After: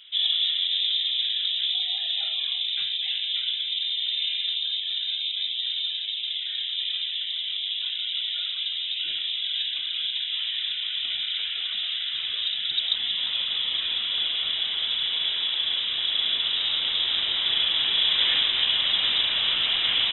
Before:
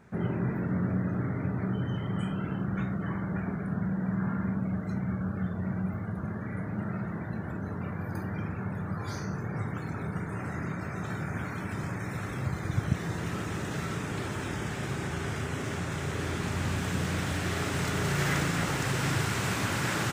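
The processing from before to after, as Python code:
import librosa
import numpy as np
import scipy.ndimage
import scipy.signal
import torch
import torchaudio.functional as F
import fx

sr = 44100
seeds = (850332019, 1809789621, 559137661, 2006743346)

y = fx.band_shelf(x, sr, hz=570.0, db=14.0, octaves=1.7)
y = fx.freq_invert(y, sr, carrier_hz=3800)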